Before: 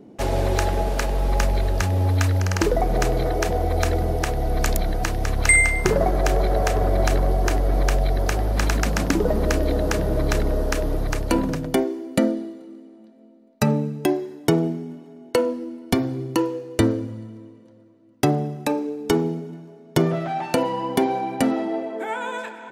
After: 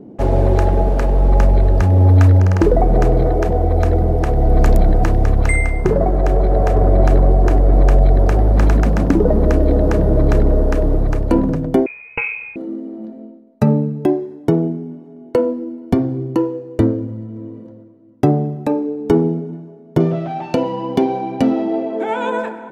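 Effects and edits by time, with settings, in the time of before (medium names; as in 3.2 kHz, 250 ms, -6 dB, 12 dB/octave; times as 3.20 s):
11.86–12.56 s: frequency inversion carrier 2.8 kHz
20.00–22.30 s: high-order bell 4 kHz +9 dB
whole clip: tilt shelf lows +10 dB, about 1.5 kHz; level rider; trim -1 dB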